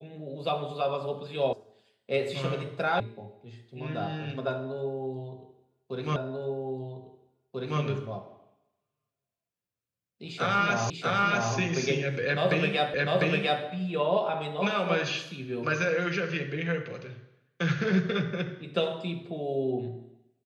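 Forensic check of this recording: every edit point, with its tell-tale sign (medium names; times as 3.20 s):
1.53 s: sound stops dead
3.00 s: sound stops dead
6.16 s: repeat of the last 1.64 s
10.90 s: repeat of the last 0.64 s
12.94 s: repeat of the last 0.7 s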